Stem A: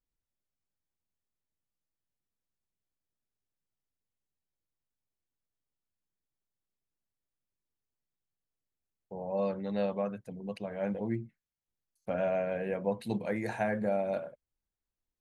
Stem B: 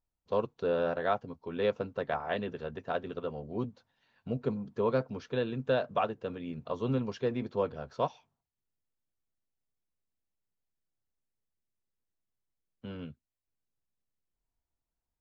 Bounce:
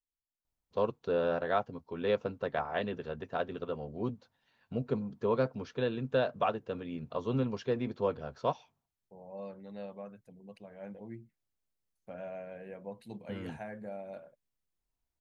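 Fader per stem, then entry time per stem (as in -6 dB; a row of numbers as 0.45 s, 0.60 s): -12.0 dB, -0.5 dB; 0.00 s, 0.45 s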